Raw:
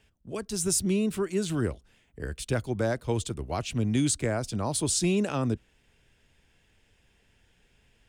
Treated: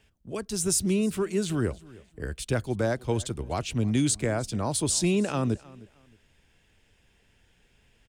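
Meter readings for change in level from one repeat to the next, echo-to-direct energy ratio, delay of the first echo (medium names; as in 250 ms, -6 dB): -11.5 dB, -21.0 dB, 310 ms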